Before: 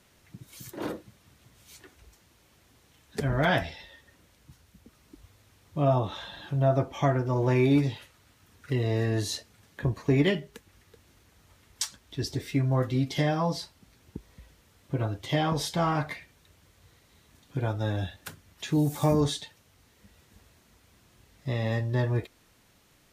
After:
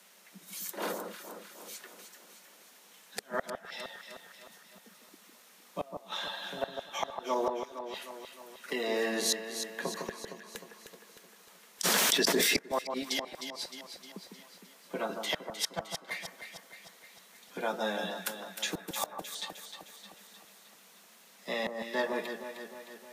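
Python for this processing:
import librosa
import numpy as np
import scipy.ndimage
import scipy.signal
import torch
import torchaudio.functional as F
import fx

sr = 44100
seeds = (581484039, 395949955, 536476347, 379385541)

p1 = scipy.signal.sosfilt(scipy.signal.butter(16, 180.0, 'highpass', fs=sr, output='sos'), x)
p2 = fx.high_shelf(p1, sr, hz=7900.0, db=6.0)
p3 = fx.gate_flip(p2, sr, shuts_db=-20.0, range_db=-31)
p4 = fx.peak_eq(p3, sr, hz=290.0, db=-14.0, octaves=0.84)
p5 = p4 + fx.echo_alternate(p4, sr, ms=154, hz=1400.0, feedback_pct=74, wet_db=-5.5, dry=0)
p6 = fx.env_flatten(p5, sr, amount_pct=100, at=(11.83, 12.57), fade=0.02)
y = p6 * librosa.db_to_amplitude(3.5)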